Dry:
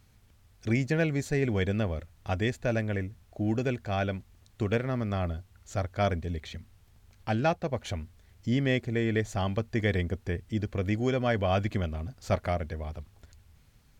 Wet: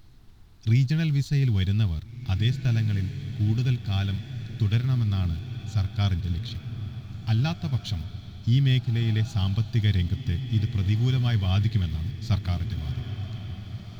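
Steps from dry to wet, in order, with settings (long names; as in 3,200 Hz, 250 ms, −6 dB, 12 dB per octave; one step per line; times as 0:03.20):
in parallel at −7.5 dB: centre clipping without the shift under −35.5 dBFS
on the sum: graphic EQ with 10 bands 125 Hz +10 dB, 250 Hz −4 dB, 500 Hz −11 dB, 1,000 Hz −5 dB, 2,000 Hz −9 dB, 4,000 Hz +12 dB, 8,000 Hz −8 dB
on a send: feedback delay with all-pass diffusion 1,805 ms, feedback 43%, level −11 dB
on the sum: background noise brown −50 dBFS
parametric band 540 Hz −12 dB 0.49 octaves
level −1 dB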